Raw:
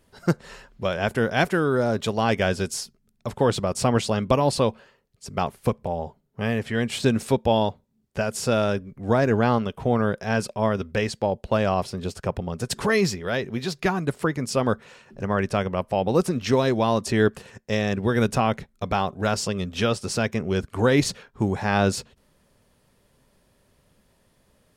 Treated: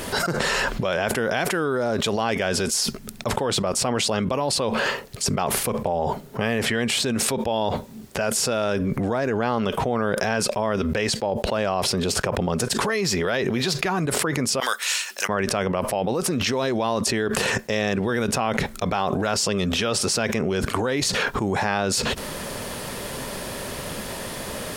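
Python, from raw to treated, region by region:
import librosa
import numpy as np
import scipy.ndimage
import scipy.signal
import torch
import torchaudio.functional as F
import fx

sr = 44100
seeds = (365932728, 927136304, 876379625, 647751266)

y = fx.chain(x, sr, fx.highpass(hz=1200.0, slope=6),
    fx.differentiator(), at=(14.6, 15.29))
y = fx.low_shelf(y, sr, hz=190.0, db=-10.5)
y = fx.env_flatten(y, sr, amount_pct=100)
y = y * 10.0 ** (-6.0 / 20.0)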